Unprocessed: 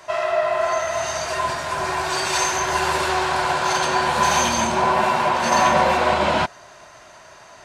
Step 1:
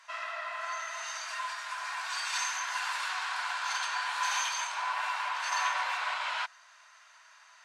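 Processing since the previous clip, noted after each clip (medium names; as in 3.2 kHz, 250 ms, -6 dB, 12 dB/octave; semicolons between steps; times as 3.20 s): high-pass 1.1 kHz 24 dB/octave; treble shelf 10 kHz -10.5 dB; trim -8.5 dB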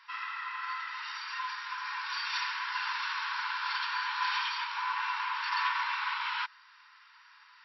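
brick-wall FIR band-pass 820–5700 Hz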